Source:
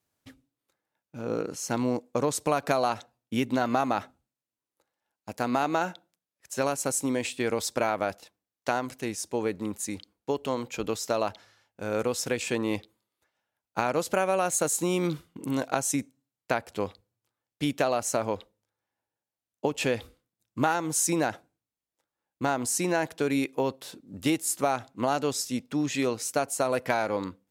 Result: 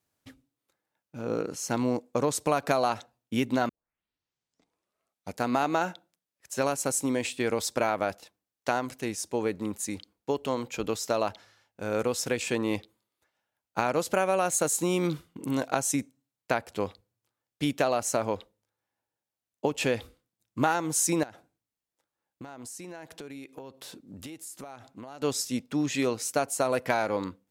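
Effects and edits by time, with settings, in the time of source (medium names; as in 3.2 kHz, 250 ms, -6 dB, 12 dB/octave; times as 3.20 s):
3.69 s: tape start 1.75 s
21.23–25.22 s: compression 8:1, threshold -39 dBFS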